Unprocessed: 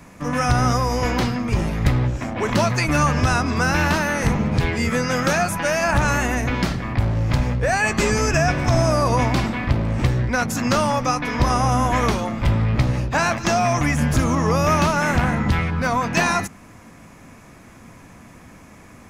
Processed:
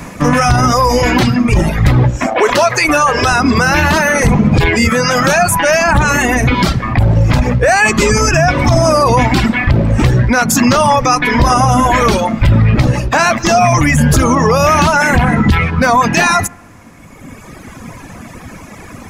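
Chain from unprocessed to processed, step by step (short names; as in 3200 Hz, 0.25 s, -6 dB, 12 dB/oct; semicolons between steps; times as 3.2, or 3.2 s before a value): analogue delay 74 ms, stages 1024, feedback 61%, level -20 dB; reverb removal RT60 1.9 s; 2.26–3.27 resonant low shelf 290 Hz -12.5 dB, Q 1.5; maximiser +17.5 dB; gain -1 dB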